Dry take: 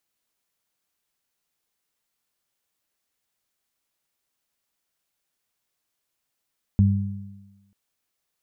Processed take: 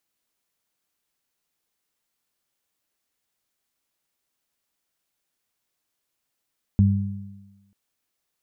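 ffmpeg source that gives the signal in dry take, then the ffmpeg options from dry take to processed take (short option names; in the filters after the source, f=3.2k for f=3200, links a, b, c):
-f lavfi -i "aevalsrc='0.224*pow(10,-3*t/1.08)*sin(2*PI*99*t)+0.141*pow(10,-3*t/1.2)*sin(2*PI*198*t)':d=0.94:s=44100"
-af "equalizer=f=290:w=1.5:g=2"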